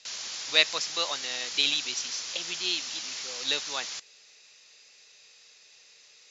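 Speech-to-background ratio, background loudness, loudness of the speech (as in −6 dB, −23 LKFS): 6.0 dB, −34.5 LKFS, −28.5 LKFS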